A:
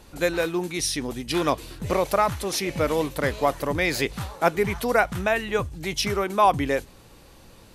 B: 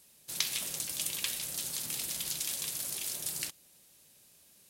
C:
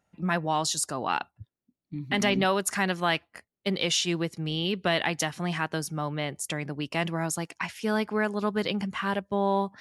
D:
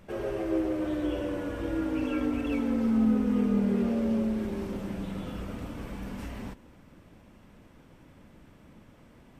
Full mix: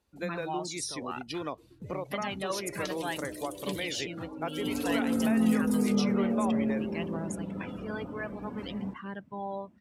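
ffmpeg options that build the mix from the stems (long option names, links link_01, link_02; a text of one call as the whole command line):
ffmpeg -i stem1.wav -i stem2.wav -i stem3.wav -i stem4.wav -filter_complex "[0:a]volume=-9dB[link_01];[1:a]adelay=2450,volume=-4dB,asplit=3[link_02][link_03][link_04];[link_02]atrim=end=3.92,asetpts=PTS-STARTPTS,afade=type=out:start_time=3.916:duration=0.004:curve=hsin[link_05];[link_03]atrim=start=3.92:end=4.48,asetpts=PTS-STARTPTS,volume=0[link_06];[link_04]atrim=start=4.48,asetpts=PTS-STARTPTS,afade=type=in:duration=0.004:curve=hsin[link_07];[link_05][link_06][link_07]concat=n=3:v=0:a=1[link_08];[2:a]aphaser=in_gain=1:out_gain=1:delay=2.2:decay=0.5:speed=0.56:type=triangular,volume=-11.5dB[link_09];[3:a]adelay=2400,volume=-0.5dB,afade=type=in:start_time=4.51:duration=0.35:silence=0.251189[link_10];[link_01][link_08]amix=inputs=2:normalize=0,acompressor=threshold=-31dB:ratio=6,volume=0dB[link_11];[link_09][link_10][link_11]amix=inputs=3:normalize=0,afftdn=noise_reduction=17:noise_floor=-44,highpass=120" out.wav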